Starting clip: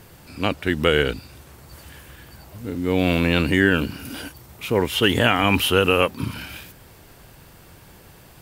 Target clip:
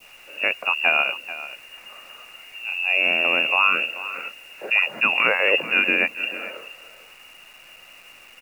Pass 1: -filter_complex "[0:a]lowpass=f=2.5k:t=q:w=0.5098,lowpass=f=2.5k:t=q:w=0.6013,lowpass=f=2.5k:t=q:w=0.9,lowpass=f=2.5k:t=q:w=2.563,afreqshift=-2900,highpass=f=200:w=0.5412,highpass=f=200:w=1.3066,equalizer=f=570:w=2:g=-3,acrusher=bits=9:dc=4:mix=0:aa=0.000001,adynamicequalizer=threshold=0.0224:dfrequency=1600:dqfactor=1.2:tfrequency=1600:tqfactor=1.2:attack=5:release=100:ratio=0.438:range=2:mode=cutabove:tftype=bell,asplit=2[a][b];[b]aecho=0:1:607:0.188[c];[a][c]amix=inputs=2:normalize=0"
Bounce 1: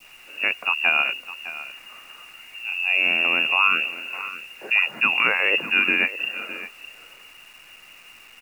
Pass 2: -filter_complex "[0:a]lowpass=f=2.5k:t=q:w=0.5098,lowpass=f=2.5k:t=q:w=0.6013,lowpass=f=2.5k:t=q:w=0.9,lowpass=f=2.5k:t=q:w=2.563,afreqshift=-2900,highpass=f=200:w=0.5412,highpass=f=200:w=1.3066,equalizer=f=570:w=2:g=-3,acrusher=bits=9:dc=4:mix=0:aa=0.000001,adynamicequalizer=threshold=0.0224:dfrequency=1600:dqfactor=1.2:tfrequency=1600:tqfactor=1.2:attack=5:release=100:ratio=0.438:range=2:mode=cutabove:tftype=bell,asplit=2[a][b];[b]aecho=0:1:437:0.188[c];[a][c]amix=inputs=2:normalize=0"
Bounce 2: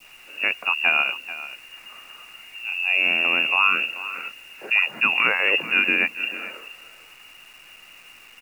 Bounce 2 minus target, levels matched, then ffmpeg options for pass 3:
500 Hz band -6.0 dB
-filter_complex "[0:a]lowpass=f=2.5k:t=q:w=0.5098,lowpass=f=2.5k:t=q:w=0.6013,lowpass=f=2.5k:t=q:w=0.9,lowpass=f=2.5k:t=q:w=2.563,afreqshift=-2900,highpass=f=200:w=0.5412,highpass=f=200:w=1.3066,equalizer=f=570:w=2:g=5.5,acrusher=bits=9:dc=4:mix=0:aa=0.000001,adynamicequalizer=threshold=0.0224:dfrequency=1600:dqfactor=1.2:tfrequency=1600:tqfactor=1.2:attack=5:release=100:ratio=0.438:range=2:mode=cutabove:tftype=bell,asplit=2[a][b];[b]aecho=0:1:437:0.188[c];[a][c]amix=inputs=2:normalize=0"

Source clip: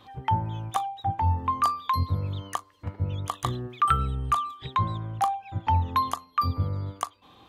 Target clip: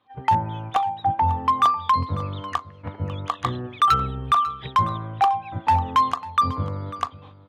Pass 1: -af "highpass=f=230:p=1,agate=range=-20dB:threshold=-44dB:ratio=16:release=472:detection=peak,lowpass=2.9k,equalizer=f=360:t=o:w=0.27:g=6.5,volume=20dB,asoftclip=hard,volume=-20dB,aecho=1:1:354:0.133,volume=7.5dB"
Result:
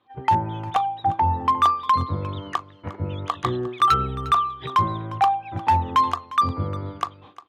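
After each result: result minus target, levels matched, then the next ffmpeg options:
echo 0.192 s early; 500 Hz band +3.5 dB
-af "highpass=f=230:p=1,agate=range=-20dB:threshold=-44dB:ratio=16:release=472:detection=peak,lowpass=2.9k,equalizer=f=360:t=o:w=0.27:g=6.5,volume=20dB,asoftclip=hard,volume=-20dB,aecho=1:1:546:0.133,volume=7.5dB"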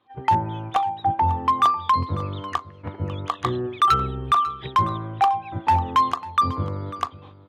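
500 Hz band +3.5 dB
-af "highpass=f=230:p=1,agate=range=-20dB:threshold=-44dB:ratio=16:release=472:detection=peak,lowpass=2.9k,equalizer=f=360:t=o:w=0.27:g=-4,volume=20dB,asoftclip=hard,volume=-20dB,aecho=1:1:546:0.133,volume=7.5dB"

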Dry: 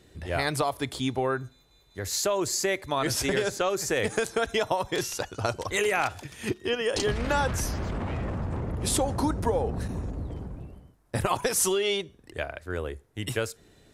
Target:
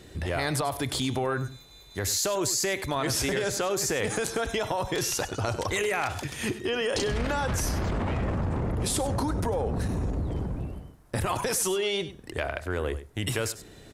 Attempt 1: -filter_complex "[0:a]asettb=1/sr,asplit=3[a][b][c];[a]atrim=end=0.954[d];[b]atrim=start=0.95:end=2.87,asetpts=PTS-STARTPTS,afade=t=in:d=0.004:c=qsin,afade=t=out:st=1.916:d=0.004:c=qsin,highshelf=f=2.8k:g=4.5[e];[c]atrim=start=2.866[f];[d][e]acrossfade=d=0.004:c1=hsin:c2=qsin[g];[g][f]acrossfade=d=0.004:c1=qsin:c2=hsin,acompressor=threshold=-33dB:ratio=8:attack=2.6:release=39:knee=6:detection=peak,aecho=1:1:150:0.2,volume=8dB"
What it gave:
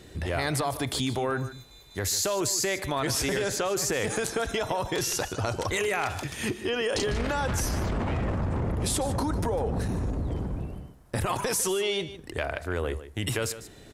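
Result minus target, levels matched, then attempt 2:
echo 52 ms late
-filter_complex "[0:a]asettb=1/sr,asplit=3[a][b][c];[a]atrim=end=0.954[d];[b]atrim=start=0.95:end=2.87,asetpts=PTS-STARTPTS,afade=t=in:d=0.004:c=qsin,afade=t=out:st=1.916:d=0.004:c=qsin,highshelf=f=2.8k:g=4.5[e];[c]atrim=start=2.866[f];[d][e]acrossfade=d=0.004:c1=hsin:c2=qsin[g];[g][f]acrossfade=d=0.004:c1=qsin:c2=hsin,acompressor=threshold=-33dB:ratio=8:attack=2.6:release=39:knee=6:detection=peak,aecho=1:1:98:0.2,volume=8dB"

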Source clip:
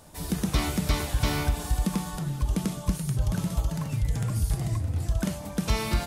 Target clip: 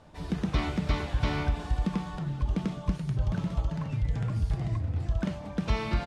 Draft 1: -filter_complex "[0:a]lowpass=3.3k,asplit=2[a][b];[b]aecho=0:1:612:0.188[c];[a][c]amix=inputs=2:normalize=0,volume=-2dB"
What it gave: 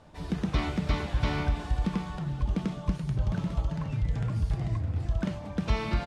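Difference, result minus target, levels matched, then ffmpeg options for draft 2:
echo-to-direct +9.5 dB
-filter_complex "[0:a]lowpass=3.3k,asplit=2[a][b];[b]aecho=0:1:612:0.0631[c];[a][c]amix=inputs=2:normalize=0,volume=-2dB"

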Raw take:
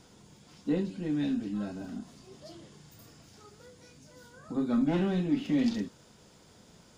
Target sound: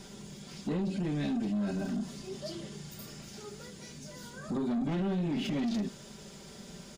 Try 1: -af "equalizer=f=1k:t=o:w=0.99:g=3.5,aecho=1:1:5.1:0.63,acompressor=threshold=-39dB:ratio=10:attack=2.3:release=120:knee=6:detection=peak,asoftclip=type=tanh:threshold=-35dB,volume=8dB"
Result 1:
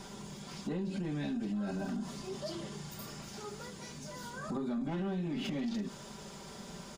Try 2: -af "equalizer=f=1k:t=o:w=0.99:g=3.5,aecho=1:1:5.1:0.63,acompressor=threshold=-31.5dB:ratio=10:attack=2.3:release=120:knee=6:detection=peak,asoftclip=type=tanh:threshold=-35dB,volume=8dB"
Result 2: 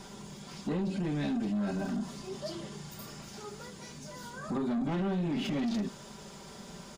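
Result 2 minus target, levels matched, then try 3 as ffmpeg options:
1000 Hz band +3.5 dB
-af "equalizer=f=1k:t=o:w=0.99:g=-4.5,aecho=1:1:5.1:0.63,acompressor=threshold=-31.5dB:ratio=10:attack=2.3:release=120:knee=6:detection=peak,asoftclip=type=tanh:threshold=-35dB,volume=8dB"

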